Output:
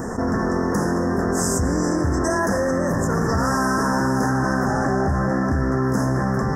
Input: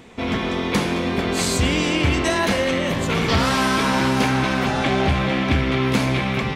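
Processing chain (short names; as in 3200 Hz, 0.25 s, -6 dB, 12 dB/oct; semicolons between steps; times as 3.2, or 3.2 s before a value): Chebyshev band-stop 1800–5200 Hz, order 5; fast leveller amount 70%; gain -3 dB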